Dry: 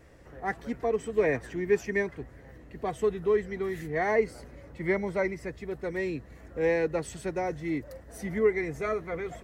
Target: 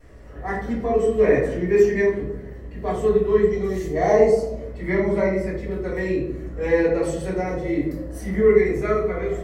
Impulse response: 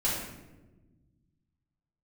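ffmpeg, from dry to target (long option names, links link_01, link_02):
-filter_complex "[0:a]asettb=1/sr,asplit=3[link_01][link_02][link_03];[link_01]atrim=end=3.504[link_04];[link_02]atrim=start=3.5:end=4.58,asetpts=PTS-STARTPTS,afade=type=in:duration=0.004:curve=qsin,afade=type=out:start_time=1.076:duration=0.004:curve=qsin,equalizer=frequency=630:width_type=o:width=0.67:gain=6,equalizer=frequency=1600:width_type=o:width=0.67:gain=-8,equalizer=frequency=6300:width_type=o:width=0.67:gain=10[link_05];[link_03]atrim=start=4.576[link_06];[link_04][link_05]acrossfade=duration=0.004:curve1=hsin:curve2=qsin[link_07];[link_07][link_06]acrossfade=duration=0.004:curve1=qsin:curve2=hsin[link_08];[1:a]atrim=start_sample=2205,asetrate=83790,aresample=44100[link_09];[link_08][link_09]afir=irnorm=-1:irlink=0,volume=1.5dB"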